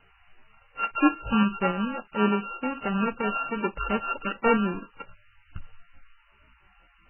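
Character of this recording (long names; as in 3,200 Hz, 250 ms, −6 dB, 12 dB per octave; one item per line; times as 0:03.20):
a buzz of ramps at a fixed pitch in blocks of 32 samples
tremolo saw up 3.5 Hz, depth 45%
a quantiser's noise floor 10 bits, dither triangular
MP3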